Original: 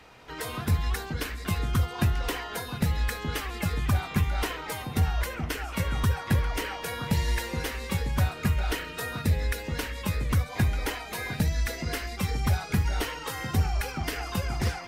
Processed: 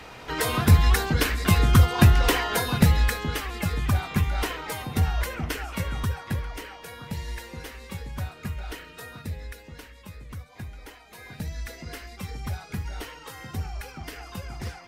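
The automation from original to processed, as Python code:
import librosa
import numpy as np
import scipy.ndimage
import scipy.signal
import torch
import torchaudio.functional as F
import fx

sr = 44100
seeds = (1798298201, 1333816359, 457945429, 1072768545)

y = fx.gain(x, sr, db=fx.line((2.78, 9.0), (3.38, 1.5), (5.51, 1.5), (6.71, -7.5), (9.03, -7.5), (10.07, -14.0), (10.99, -14.0), (11.5, -7.0)))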